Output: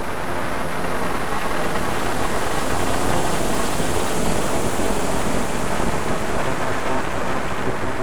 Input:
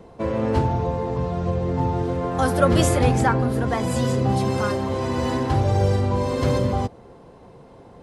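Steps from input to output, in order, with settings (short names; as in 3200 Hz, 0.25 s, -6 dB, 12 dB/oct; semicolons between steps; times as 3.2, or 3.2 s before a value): Paulstretch 7×, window 1.00 s, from 2.31; full-wave rectifier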